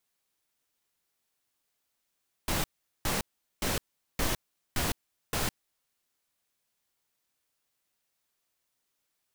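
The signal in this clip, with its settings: noise bursts pink, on 0.16 s, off 0.41 s, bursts 6, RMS -29 dBFS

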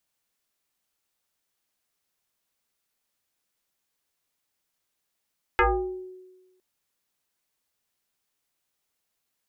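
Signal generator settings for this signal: FM tone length 1.01 s, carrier 370 Hz, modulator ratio 1.15, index 4.8, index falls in 0.63 s exponential, decay 1.22 s, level -15 dB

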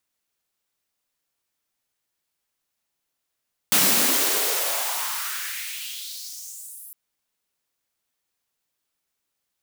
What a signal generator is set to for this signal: swept filtered noise white, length 3.21 s highpass, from 160 Hz, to 12000 Hz, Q 2.9, exponential, gain ramp -27 dB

